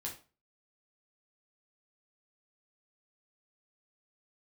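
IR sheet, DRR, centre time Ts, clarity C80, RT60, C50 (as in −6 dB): −2.5 dB, 21 ms, 15.0 dB, 0.35 s, 9.0 dB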